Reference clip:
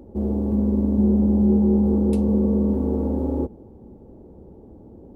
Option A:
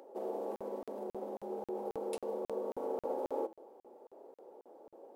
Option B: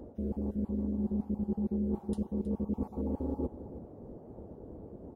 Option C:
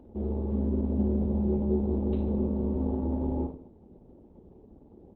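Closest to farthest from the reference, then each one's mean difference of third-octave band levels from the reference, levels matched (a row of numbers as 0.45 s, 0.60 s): C, B, A; 2.5 dB, 3.5 dB, 10.0 dB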